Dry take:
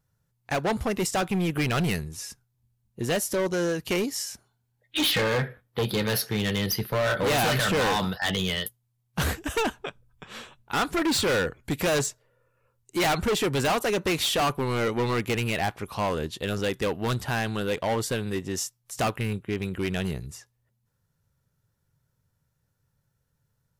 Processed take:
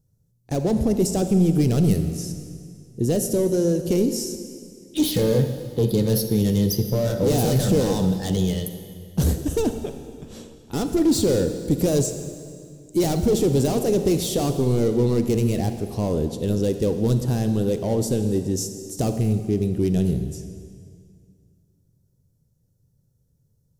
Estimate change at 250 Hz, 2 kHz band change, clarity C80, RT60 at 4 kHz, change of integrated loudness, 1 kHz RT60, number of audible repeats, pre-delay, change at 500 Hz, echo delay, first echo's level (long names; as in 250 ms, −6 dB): +8.5 dB, −13.5 dB, 9.5 dB, 1.9 s, +4.5 dB, 2.0 s, no echo audible, 34 ms, +5.0 dB, no echo audible, no echo audible